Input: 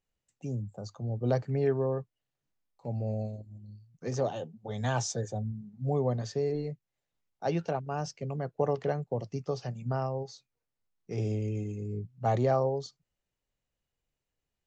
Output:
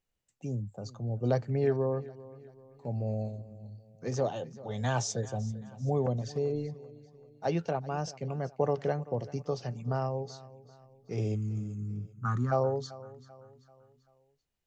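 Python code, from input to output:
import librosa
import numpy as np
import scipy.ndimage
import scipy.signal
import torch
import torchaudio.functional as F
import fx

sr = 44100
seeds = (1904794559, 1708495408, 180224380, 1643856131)

y = fx.env_flanger(x, sr, rest_ms=9.1, full_db=-27.5, at=(6.06, 7.45))
y = fx.curve_eq(y, sr, hz=(250.0, 630.0, 1300.0, 2100.0, 4200.0, 8600.0), db=(0, -30, 15, -14, -14, 2), at=(11.34, 12.51), fade=0.02)
y = fx.echo_feedback(y, sr, ms=388, feedback_pct=44, wet_db=-18.5)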